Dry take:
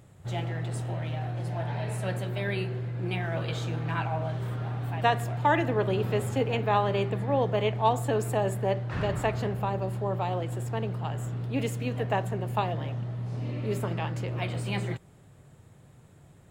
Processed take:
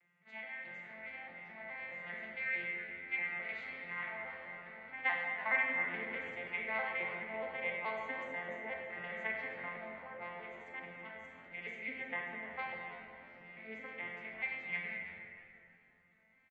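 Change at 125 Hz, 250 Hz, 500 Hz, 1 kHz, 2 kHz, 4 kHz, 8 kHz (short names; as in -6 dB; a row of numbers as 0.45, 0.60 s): -33.5 dB, -20.0 dB, -17.0 dB, -15.0 dB, +1.0 dB, -14.5 dB, under -30 dB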